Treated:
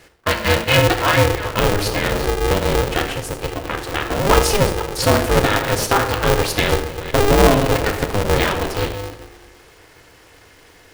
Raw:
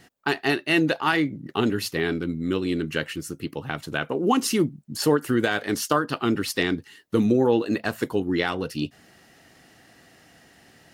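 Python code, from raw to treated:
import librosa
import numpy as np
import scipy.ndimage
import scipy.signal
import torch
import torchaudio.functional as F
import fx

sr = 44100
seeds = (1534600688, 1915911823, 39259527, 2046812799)

y = fx.reverse_delay(x, sr, ms=254, wet_db=-12.0)
y = fx.room_shoebox(y, sr, seeds[0], volume_m3=2600.0, walls='furnished', distance_m=2.3)
y = y * np.sign(np.sin(2.0 * np.pi * 200.0 * np.arange(len(y)) / sr))
y = y * 10.0 ** (4.0 / 20.0)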